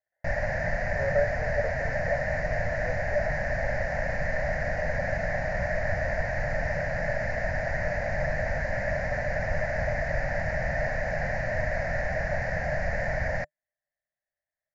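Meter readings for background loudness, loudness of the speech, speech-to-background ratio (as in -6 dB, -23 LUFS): -29.5 LUFS, -33.5 LUFS, -4.0 dB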